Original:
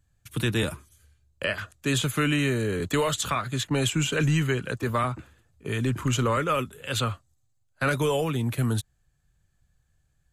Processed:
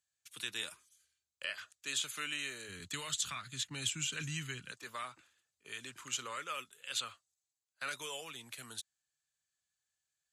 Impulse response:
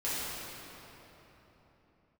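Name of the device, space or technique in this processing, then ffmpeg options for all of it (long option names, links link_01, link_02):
piezo pickup straight into a mixer: -filter_complex "[0:a]lowpass=6200,aderivative,asplit=3[link_01][link_02][link_03];[link_01]afade=type=out:start_time=2.68:duration=0.02[link_04];[link_02]asubboost=boost=11.5:cutoff=170,afade=type=in:start_time=2.68:duration=0.02,afade=type=out:start_time=4.71:duration=0.02[link_05];[link_03]afade=type=in:start_time=4.71:duration=0.02[link_06];[link_04][link_05][link_06]amix=inputs=3:normalize=0"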